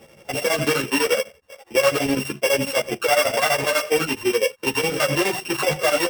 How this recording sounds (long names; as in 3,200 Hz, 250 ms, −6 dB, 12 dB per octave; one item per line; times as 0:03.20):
a buzz of ramps at a fixed pitch in blocks of 16 samples
chopped level 12 Hz, depth 65%, duty 65%
a shimmering, thickened sound